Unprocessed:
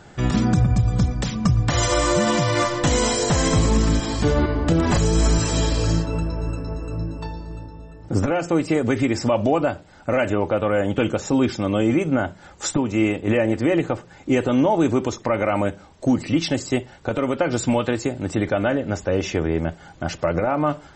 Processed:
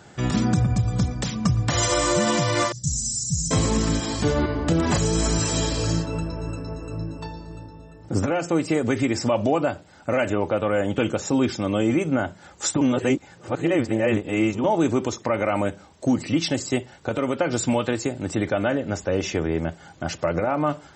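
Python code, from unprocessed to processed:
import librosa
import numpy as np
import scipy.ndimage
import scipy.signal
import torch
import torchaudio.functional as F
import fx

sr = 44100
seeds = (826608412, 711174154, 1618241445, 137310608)

y = fx.ellip_bandstop(x, sr, low_hz=160.0, high_hz=5800.0, order=3, stop_db=40, at=(2.72, 3.51))
y = fx.edit(y, sr, fx.reverse_span(start_s=12.81, length_s=1.83), tone=tone)
y = scipy.signal.sosfilt(scipy.signal.butter(2, 71.0, 'highpass', fs=sr, output='sos'), y)
y = fx.high_shelf(y, sr, hz=5700.0, db=6.0)
y = F.gain(torch.from_numpy(y), -2.0).numpy()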